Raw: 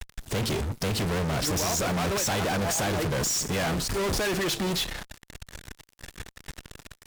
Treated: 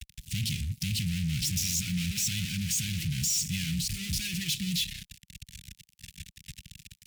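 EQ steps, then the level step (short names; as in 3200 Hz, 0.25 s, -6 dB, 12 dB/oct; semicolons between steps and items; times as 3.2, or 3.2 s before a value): HPF 54 Hz; elliptic band-stop 180–2500 Hz, stop band 80 dB; 0.0 dB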